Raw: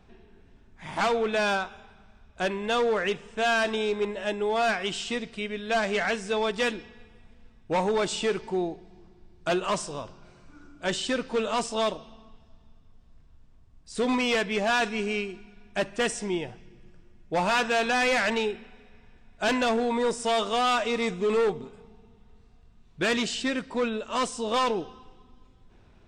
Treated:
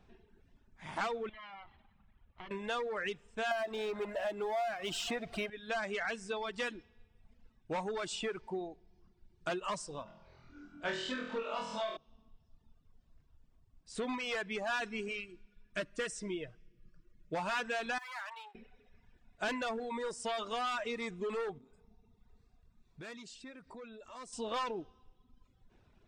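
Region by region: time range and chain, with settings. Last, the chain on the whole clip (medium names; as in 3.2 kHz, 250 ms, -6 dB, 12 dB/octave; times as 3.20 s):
1.29–2.51 s: comb filter that takes the minimum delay 0.97 ms + compression 16:1, threshold -37 dBFS + low-pass 3.3 kHz 24 dB/octave
3.51–5.50 s: peaking EQ 690 Hz +13.5 dB 0.52 oct + power-law waveshaper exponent 0.7
10.03–11.97 s: low-pass 5 kHz + hum notches 60/120/180/240/300/360/420 Hz + flutter echo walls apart 4.1 m, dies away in 1.2 s
15.08–17.35 s: Butterworth band-stop 820 Hz, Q 2.3 + comb 6.4 ms, depth 37%
17.98–18.55 s: partial rectifier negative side -12 dB + ladder high-pass 800 Hz, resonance 55%
21.58–24.33 s: compression 4:1, threshold -41 dBFS + band-stop 3 kHz, Q 6.9
whole clip: compression, threshold -27 dBFS; dynamic bell 1.5 kHz, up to +4 dB, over -43 dBFS, Q 1.2; reverb removal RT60 1 s; trim -7 dB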